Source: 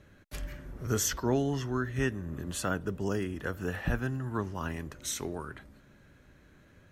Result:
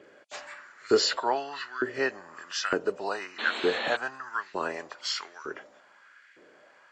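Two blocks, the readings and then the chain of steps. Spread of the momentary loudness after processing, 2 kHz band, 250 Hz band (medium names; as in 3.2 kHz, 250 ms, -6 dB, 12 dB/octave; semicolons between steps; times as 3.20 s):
17 LU, +7.5 dB, -4.0 dB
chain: knee-point frequency compression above 2.3 kHz 1.5:1; LFO high-pass saw up 1.1 Hz 370–2100 Hz; painted sound noise, 3.38–3.97 s, 210–4400 Hz -40 dBFS; trim +5 dB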